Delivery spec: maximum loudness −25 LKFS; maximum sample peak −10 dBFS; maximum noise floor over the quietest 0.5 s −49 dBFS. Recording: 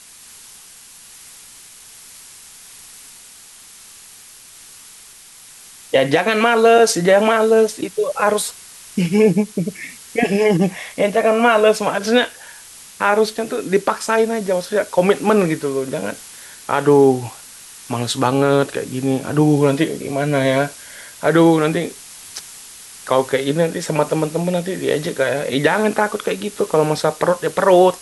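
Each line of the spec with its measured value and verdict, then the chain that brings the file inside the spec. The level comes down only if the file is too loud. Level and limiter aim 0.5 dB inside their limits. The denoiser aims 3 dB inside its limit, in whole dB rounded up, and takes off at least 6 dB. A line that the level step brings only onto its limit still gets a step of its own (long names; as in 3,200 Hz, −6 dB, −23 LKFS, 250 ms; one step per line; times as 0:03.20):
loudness −17.0 LKFS: out of spec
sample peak −2.5 dBFS: out of spec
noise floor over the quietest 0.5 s −43 dBFS: out of spec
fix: level −8.5 dB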